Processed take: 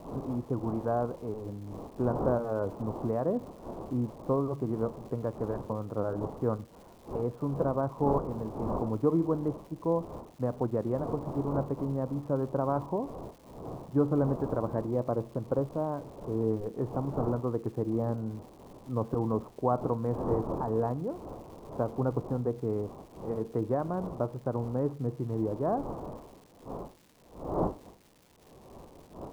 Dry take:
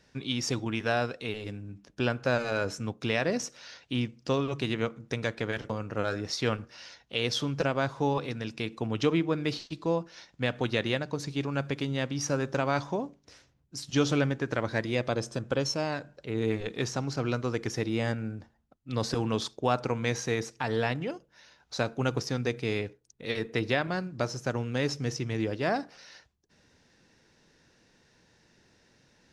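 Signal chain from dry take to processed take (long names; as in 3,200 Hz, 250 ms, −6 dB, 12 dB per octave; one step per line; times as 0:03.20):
wind on the microphone 630 Hz −41 dBFS
Chebyshev low-pass filter 1,100 Hz, order 4
surface crackle 470 per second −49 dBFS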